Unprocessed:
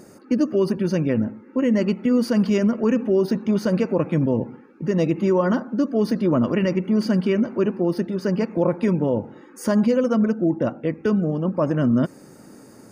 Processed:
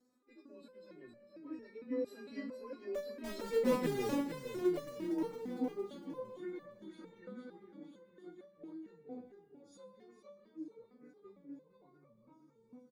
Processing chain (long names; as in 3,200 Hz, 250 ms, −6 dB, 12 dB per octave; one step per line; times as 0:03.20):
partials spread apart or drawn together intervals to 92%
source passing by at 0:03.90, 25 m/s, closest 6.5 metres
in parallel at −10 dB: wrap-around overflow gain 24 dB
on the sum: repeating echo 458 ms, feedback 48%, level −6.5 dB
on a send at −13.5 dB: convolution reverb RT60 1.8 s, pre-delay 107 ms
on the sum: step-sequenced resonator 4.4 Hz 250–580 Hz
level +8.5 dB